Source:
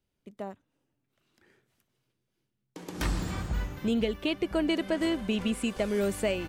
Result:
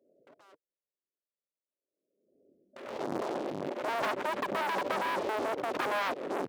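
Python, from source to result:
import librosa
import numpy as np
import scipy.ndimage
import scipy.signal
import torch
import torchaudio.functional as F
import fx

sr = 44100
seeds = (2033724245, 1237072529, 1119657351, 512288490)

y = fx.tape_stop_end(x, sr, length_s=0.43)
y = fx.transient(y, sr, attack_db=-5, sustain_db=1)
y = scipy.signal.sosfilt(scipy.signal.butter(12, 610.0, 'lowpass', fs=sr, output='sos'), y)
y = fx.leveller(y, sr, passes=5)
y = fx.level_steps(y, sr, step_db=24)
y = fx.spec_gate(y, sr, threshold_db=-10, keep='weak')
y = scipy.signal.sosfilt(scipy.signal.butter(2, 350.0, 'highpass', fs=sr, output='sos'), y)
y = fx.notch(y, sr, hz=470.0, q=12.0)
y = fx.pre_swell(y, sr, db_per_s=53.0)
y = y * 10.0 ** (3.0 / 20.0)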